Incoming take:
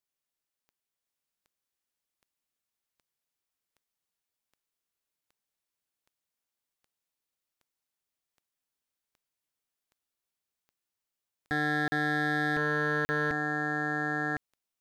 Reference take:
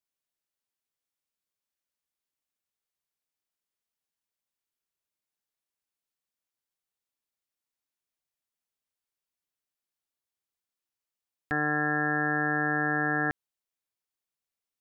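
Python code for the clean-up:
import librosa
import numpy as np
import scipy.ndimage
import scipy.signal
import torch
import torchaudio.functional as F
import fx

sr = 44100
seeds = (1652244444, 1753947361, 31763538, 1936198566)

y = fx.fix_declip(x, sr, threshold_db=-22.5)
y = fx.fix_declick_ar(y, sr, threshold=10.0)
y = fx.fix_interpolate(y, sr, at_s=(11.88, 13.05), length_ms=40.0)
y = fx.fix_echo_inverse(y, sr, delay_ms=1058, level_db=-3.5)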